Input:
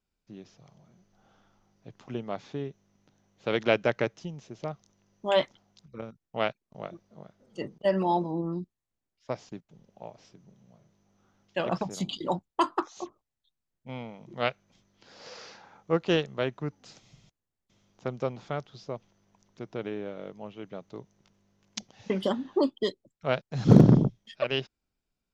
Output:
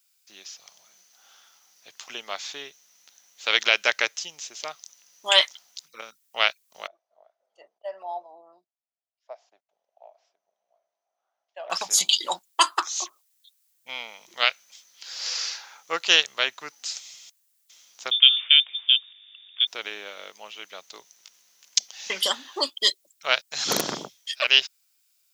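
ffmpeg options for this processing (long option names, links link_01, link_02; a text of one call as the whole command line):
ffmpeg -i in.wav -filter_complex "[0:a]asettb=1/sr,asplit=3[link_01][link_02][link_03];[link_01]atrim=end=6.874[link_04];[link_02]atrim=start=6.87:end=11.7,asetpts=PTS-STARTPTS,afade=type=in:duration=0.004:curve=qsin,afade=type=out:start_time=4.826:duration=0.004:curve=qsin,bandpass=frequency=670:width_type=q:width=6.4[link_05];[link_03]atrim=start=11.696[link_06];[link_04][link_05]acrossfade=duration=0.004:curve1=hsin:curve2=qsin[link_07];[link_07][link_06]acrossfade=duration=0.004:curve1=qsin:curve2=hsin,asettb=1/sr,asplit=3[link_08][link_09][link_10];[link_08]atrim=end=18.114[link_11];[link_09]atrim=start=18.11:end=19.67,asetpts=PTS-STARTPTS,afade=type=in:duration=0.004:curve=qsin,afade=type=out:start_time=1.556:duration=0.004:curve=qsin,lowpass=frequency=3100:width_type=q:width=0.5098,lowpass=frequency=3100:width_type=q:width=0.6013,lowpass=frequency=3100:width_type=q:width=0.9,lowpass=frequency=3100:width_type=q:width=2.563,afreqshift=-3700[link_12];[link_10]atrim=start=19.666[link_13];[link_11][link_12]acrossfade=duration=0.004:curve1=hsin:curve2=qsin[link_14];[link_14][link_13]acrossfade=duration=0.004:curve1=qsin:curve2=hsin,highpass=frequency=960:poles=1,aderivative,alimiter=level_in=25dB:limit=-1dB:release=50:level=0:latency=1,volume=-1dB" out.wav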